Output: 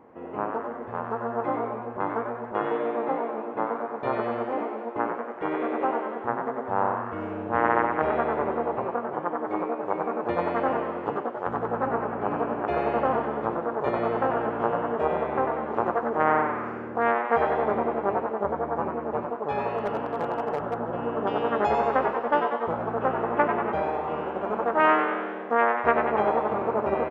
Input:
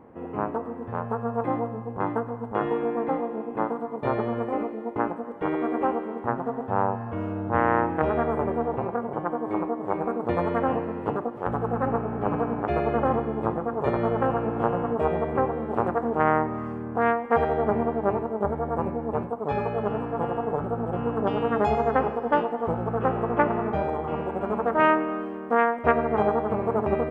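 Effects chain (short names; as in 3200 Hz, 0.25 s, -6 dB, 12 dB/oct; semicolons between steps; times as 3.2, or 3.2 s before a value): downsampling 16000 Hz; frequency-shifting echo 94 ms, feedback 51%, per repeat +130 Hz, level -7 dB; 19.78–20.78 overloaded stage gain 18 dB; low shelf 210 Hz -11 dB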